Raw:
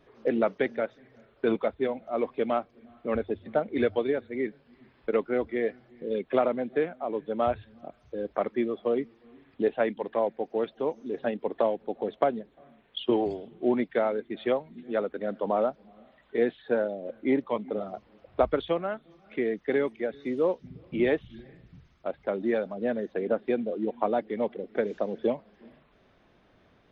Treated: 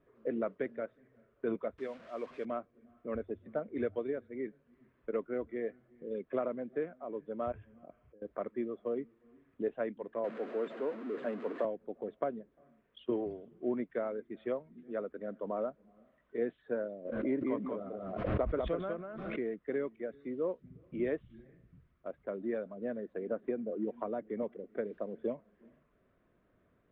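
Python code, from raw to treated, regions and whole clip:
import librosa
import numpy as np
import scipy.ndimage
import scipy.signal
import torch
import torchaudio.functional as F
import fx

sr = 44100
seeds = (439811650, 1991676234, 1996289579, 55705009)

y = fx.chain(x, sr, fx.delta_mod(bps=64000, step_db=-36.0),
    fx.tilt_eq(slope=2.5), at=(1.78, 2.45))
y = fx.chain(y, sr, fx.cheby_ripple(hz=3300.0, ripple_db=3),
    fx.over_compress(threshold_db=-45.0, ratio=-1.0), at=(7.52, 8.22))
y = fx.chain(y, sr, fx.zero_step(step_db=-28.5),
    fx.highpass(hz=210.0, slope=24),
    fx.resample_bad(factor=4, down='filtered', up='hold'), at=(10.24, 11.65))
y = fx.chain(y, sr, fx.self_delay(depth_ms=0.063),
    fx.echo_single(ms=195, db=-4.0),
    fx.pre_swell(db_per_s=36.0), at=(17.05, 19.55))
y = fx.chain(y, sr, fx.air_absorb(metres=170.0),
    fx.band_squash(depth_pct=100), at=(23.43, 24.43))
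y = scipy.signal.sosfilt(scipy.signal.butter(2, 1700.0, 'lowpass', fs=sr, output='sos'), y)
y = fx.peak_eq(y, sr, hz=820.0, db=-14.0, octaves=0.21)
y = y * 10.0 ** (-8.5 / 20.0)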